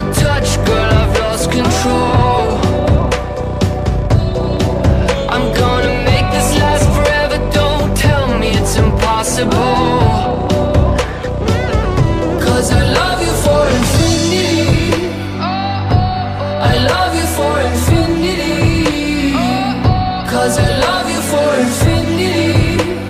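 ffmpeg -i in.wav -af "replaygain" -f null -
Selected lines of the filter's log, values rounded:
track_gain = -3.6 dB
track_peak = 0.600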